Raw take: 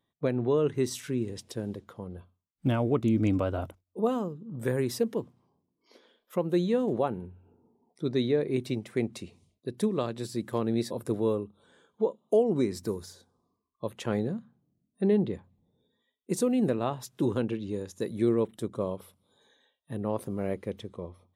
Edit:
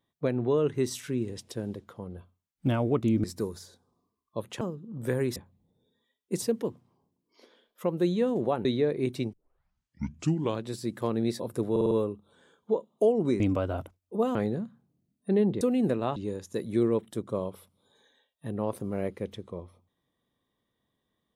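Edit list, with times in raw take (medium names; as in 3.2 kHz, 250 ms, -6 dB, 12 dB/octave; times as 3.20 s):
3.24–4.19 s: swap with 12.71–14.08 s
7.17–8.16 s: delete
8.84 s: tape start 1.30 s
11.22 s: stutter 0.05 s, 5 plays
15.34–16.40 s: move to 4.94 s
16.95–17.62 s: delete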